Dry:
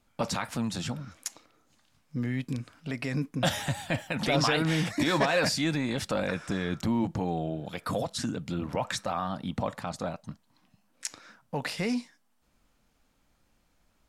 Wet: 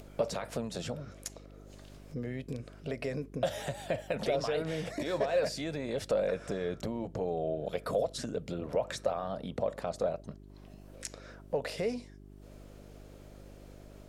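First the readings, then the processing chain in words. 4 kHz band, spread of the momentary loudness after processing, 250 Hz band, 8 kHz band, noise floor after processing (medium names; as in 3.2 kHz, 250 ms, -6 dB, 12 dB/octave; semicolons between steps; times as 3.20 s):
-9.5 dB, 21 LU, -8.5 dB, -8.0 dB, -52 dBFS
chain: compression, threshold -31 dBFS, peak gain reduction 11 dB; high-order bell 510 Hz +12.5 dB 1 oct; upward compressor, threshold -38 dBFS; mains buzz 50 Hz, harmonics 8, -48 dBFS -4 dB/octave; trim -4 dB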